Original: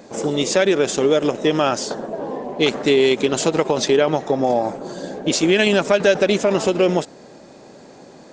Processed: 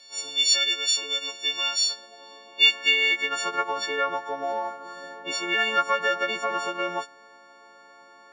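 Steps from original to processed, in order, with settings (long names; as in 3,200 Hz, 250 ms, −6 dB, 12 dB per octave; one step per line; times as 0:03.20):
every partial snapped to a pitch grid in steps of 4 semitones
band-pass filter sweep 3,900 Hz → 1,300 Hz, 0:02.37–0:03.61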